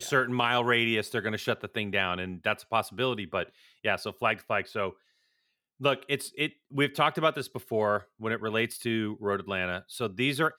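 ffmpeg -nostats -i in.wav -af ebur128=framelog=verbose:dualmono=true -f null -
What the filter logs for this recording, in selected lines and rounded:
Integrated loudness:
  I:         -26.2 LUFS
  Threshold: -36.3 LUFS
Loudness range:
  LRA:         3.2 LU
  Threshold: -46.9 LUFS
  LRA low:   -28.5 LUFS
  LRA high:  -25.3 LUFS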